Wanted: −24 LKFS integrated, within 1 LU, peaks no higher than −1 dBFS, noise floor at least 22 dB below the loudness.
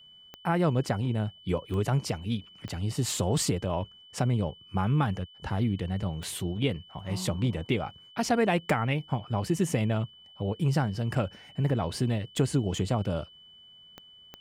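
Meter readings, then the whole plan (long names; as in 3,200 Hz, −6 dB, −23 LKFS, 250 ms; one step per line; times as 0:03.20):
number of clicks 7; interfering tone 3,000 Hz; level of the tone −51 dBFS; integrated loudness −29.5 LKFS; sample peak −13.0 dBFS; target loudness −24.0 LKFS
→ click removal
notch filter 3,000 Hz, Q 30
level +5.5 dB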